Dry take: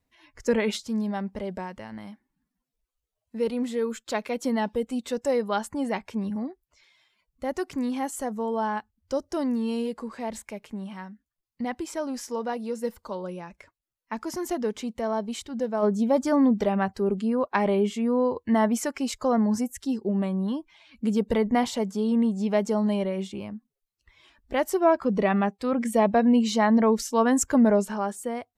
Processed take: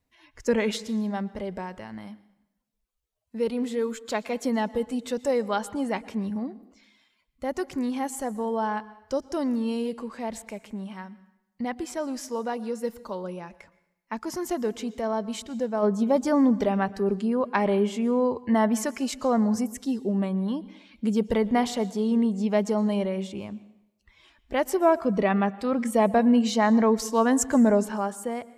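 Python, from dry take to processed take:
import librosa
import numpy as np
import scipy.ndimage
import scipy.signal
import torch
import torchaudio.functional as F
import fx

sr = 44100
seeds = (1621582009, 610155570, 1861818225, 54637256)

y = fx.rev_plate(x, sr, seeds[0], rt60_s=0.85, hf_ratio=0.9, predelay_ms=105, drr_db=18.5)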